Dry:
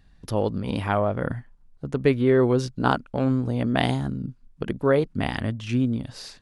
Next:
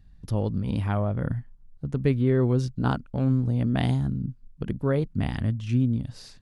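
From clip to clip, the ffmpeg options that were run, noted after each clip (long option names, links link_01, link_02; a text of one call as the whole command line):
ffmpeg -i in.wav -af "bass=frequency=250:gain=12,treble=frequency=4000:gain=2,volume=-8dB" out.wav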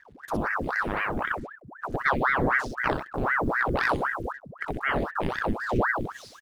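ffmpeg -i in.wav -af "aecho=1:1:12|55|65:0.133|0.211|0.501,acrusher=bits=8:mix=0:aa=0.5,aeval=exprs='val(0)*sin(2*PI*940*n/s+940*0.9/3.9*sin(2*PI*3.9*n/s))':channel_layout=same" out.wav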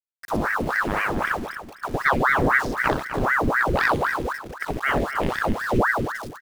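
ffmpeg -i in.wav -af "aeval=exprs='val(0)*gte(abs(val(0)),0.0106)':channel_layout=same,aecho=1:1:255|510|765:0.316|0.0727|0.0167,volume=4dB" out.wav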